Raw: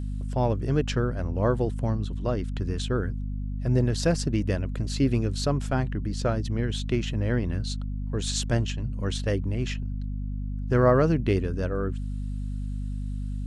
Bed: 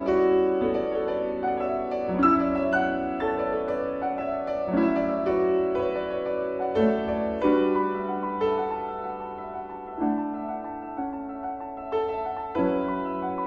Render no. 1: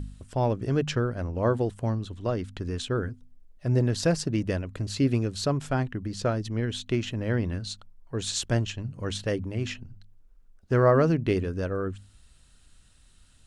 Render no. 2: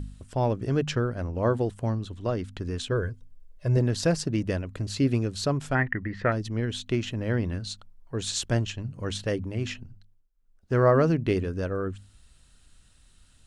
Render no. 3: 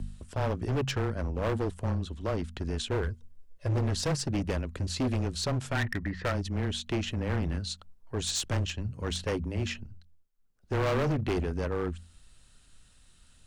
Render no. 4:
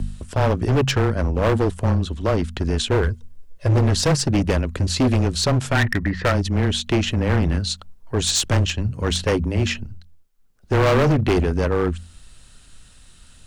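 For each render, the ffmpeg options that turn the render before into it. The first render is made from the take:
ffmpeg -i in.wav -af "bandreject=frequency=50:width_type=h:width=4,bandreject=frequency=100:width_type=h:width=4,bandreject=frequency=150:width_type=h:width=4,bandreject=frequency=200:width_type=h:width=4,bandreject=frequency=250:width_type=h:width=4" out.wav
ffmpeg -i in.wav -filter_complex "[0:a]asettb=1/sr,asplit=3[link_01][link_02][link_03];[link_01]atrim=end=2.914[link_04];[link_02]atrim=start=2.91:end=3.77,asetpts=PTS-STARTPTS,afade=type=in:duration=0.004:curve=qsin,afade=type=out:start_time=0.856:duration=0.004:curve=qsin,aecho=1:1:1.9:0.57,atrim=end_sample=37926[link_05];[link_03]atrim=start=3.766[link_06];[link_04][link_05]acrossfade=duration=0.004:curve1=hsin:curve2=qsin[link_07];[link_07][link_06]acrossfade=duration=0.004:curve1=qsin:curve2=hsin,asettb=1/sr,asplit=3[link_08][link_09][link_10];[link_08]atrim=end=5.754[link_11];[link_09]atrim=start=5.75:end=6.32,asetpts=PTS-STARTPTS,afade=type=in:duration=0.004:curve=qsin,afade=type=out:start_time=0.566:duration=0.004:curve=qsin,lowpass=frequency=1900:width_type=q:width=11[link_12];[link_10]atrim=start=6.316[link_13];[link_11][link_12]acrossfade=duration=0.004:curve1=hsin:curve2=qsin[link_14];[link_14][link_13]acrossfade=duration=0.004:curve1=qsin:curve2=hsin,asplit=3[link_15][link_16][link_17];[link_15]atrim=end=10.31,asetpts=PTS-STARTPTS,afade=type=out:start_time=9.82:duration=0.49:silence=0.0841395[link_18];[link_16]atrim=start=10.31:end=10.33,asetpts=PTS-STARTPTS,volume=-21.5dB[link_19];[link_17]atrim=start=10.33,asetpts=PTS-STARTPTS,afade=type=in:duration=0.49:silence=0.0841395[link_20];[link_18][link_19][link_20]concat=n=3:v=0:a=1" out.wav
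ffmpeg -i in.wav -af "afreqshift=-16,asoftclip=type=hard:threshold=-25dB" out.wav
ffmpeg -i in.wav -af "volume=11dB" out.wav

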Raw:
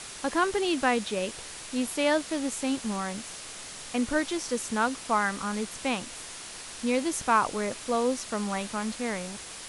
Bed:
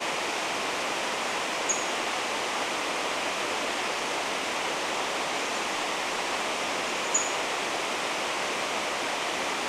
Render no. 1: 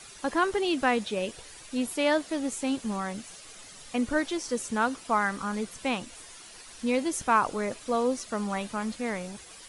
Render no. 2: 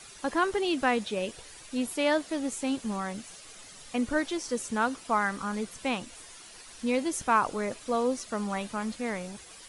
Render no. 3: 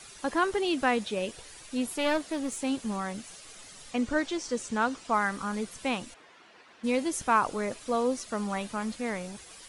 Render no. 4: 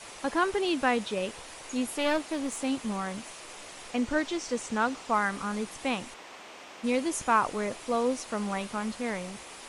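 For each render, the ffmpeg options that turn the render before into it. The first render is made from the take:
ffmpeg -i in.wav -af "afftdn=noise_reduction=10:noise_floor=-42" out.wav
ffmpeg -i in.wav -af "volume=-1dB" out.wav
ffmpeg -i in.wav -filter_complex "[0:a]asettb=1/sr,asplit=3[link_01][link_02][link_03];[link_01]atrim=end=1.844[link_04];[link_02]atrim=start=1.84:end=2.65,asetpts=PTS-STARTPTS,afade=type=in:duration=0.004:curve=qsin,afade=type=out:start_time=0.806:duration=0.004:curve=qsin,aeval=exprs='clip(val(0),-1,0.0316)':channel_layout=same[link_05];[link_03]atrim=start=2.646[link_06];[link_04][link_05]acrossfade=duration=0.004:curve1=hsin:curve2=qsin[link_07];[link_07][link_06]acrossfade=duration=0.004:curve1=qsin:curve2=hsin,asettb=1/sr,asplit=3[link_08][link_09][link_10];[link_08]atrim=end=3.914[link_11];[link_09]atrim=start=3.91:end=5.14,asetpts=PTS-STARTPTS,afade=type=in:duration=0.004:curve=qsin,afade=type=out:start_time=1.226:duration=0.004:curve=qsin,lowpass=frequency=8400:width=0.5412,lowpass=frequency=8400:width=1.3066[link_12];[link_10]atrim=start=5.136[link_13];[link_11][link_12]acrossfade=duration=0.004:curve1=hsin:curve2=qsin[link_14];[link_14][link_13]acrossfade=duration=0.004:curve1=qsin:curve2=hsin,asplit=3[link_15][link_16][link_17];[link_15]afade=type=out:start_time=6.13:duration=0.02[link_18];[link_16]highpass=200,lowpass=2300,afade=type=in:start_time=6.13:duration=0.02,afade=type=out:start_time=6.83:duration=0.02[link_19];[link_17]afade=type=in:start_time=6.83:duration=0.02[link_20];[link_18][link_19][link_20]amix=inputs=3:normalize=0" out.wav
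ffmpeg -i in.wav -i bed.wav -filter_complex "[1:a]volume=-18dB[link_01];[0:a][link_01]amix=inputs=2:normalize=0" out.wav

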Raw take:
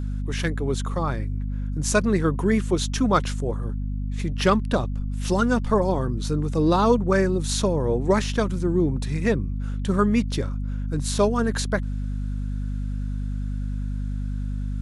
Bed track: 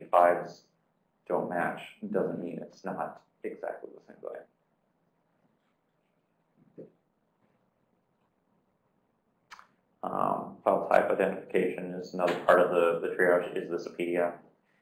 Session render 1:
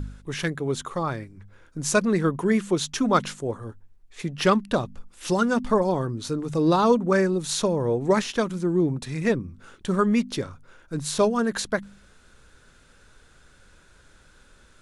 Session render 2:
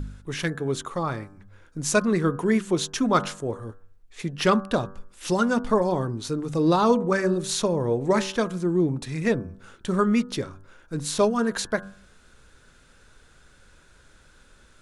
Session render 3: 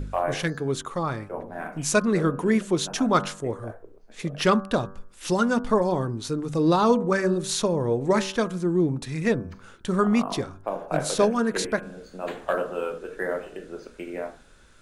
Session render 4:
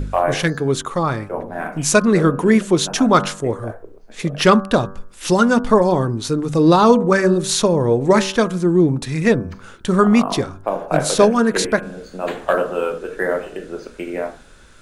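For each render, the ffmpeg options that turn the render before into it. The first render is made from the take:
ffmpeg -i in.wav -af "bandreject=frequency=50:width_type=h:width=4,bandreject=frequency=100:width_type=h:width=4,bandreject=frequency=150:width_type=h:width=4,bandreject=frequency=200:width_type=h:width=4,bandreject=frequency=250:width_type=h:width=4" out.wav
ffmpeg -i in.wav -af "bandreject=frequency=96.18:width_type=h:width=4,bandreject=frequency=192.36:width_type=h:width=4,bandreject=frequency=288.54:width_type=h:width=4,bandreject=frequency=384.72:width_type=h:width=4,bandreject=frequency=480.9:width_type=h:width=4,bandreject=frequency=577.08:width_type=h:width=4,bandreject=frequency=673.26:width_type=h:width=4,bandreject=frequency=769.44:width_type=h:width=4,bandreject=frequency=865.62:width_type=h:width=4,bandreject=frequency=961.8:width_type=h:width=4,bandreject=frequency=1057.98:width_type=h:width=4,bandreject=frequency=1154.16:width_type=h:width=4,bandreject=frequency=1250.34:width_type=h:width=4,bandreject=frequency=1346.52:width_type=h:width=4,bandreject=frequency=1442.7:width_type=h:width=4,bandreject=frequency=1538.88:width_type=h:width=4,bandreject=frequency=1635.06:width_type=h:width=4,bandreject=frequency=1731.24:width_type=h:width=4" out.wav
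ffmpeg -i in.wav -i bed.wav -filter_complex "[1:a]volume=-4.5dB[link_01];[0:a][link_01]amix=inputs=2:normalize=0" out.wav
ffmpeg -i in.wav -af "volume=8dB,alimiter=limit=-1dB:level=0:latency=1" out.wav

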